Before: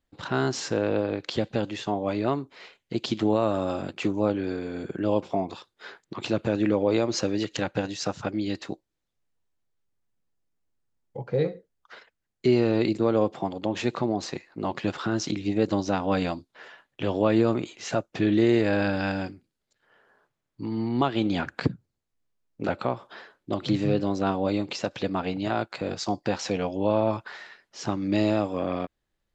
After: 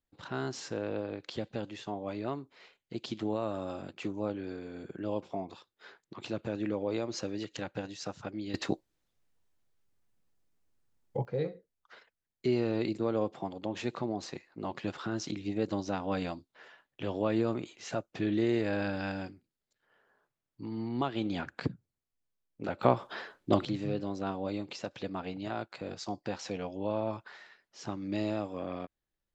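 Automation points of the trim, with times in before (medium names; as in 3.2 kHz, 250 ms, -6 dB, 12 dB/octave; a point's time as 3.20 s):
-10 dB
from 8.54 s +3 dB
from 11.25 s -8 dB
from 22.83 s +3 dB
from 23.65 s -9.5 dB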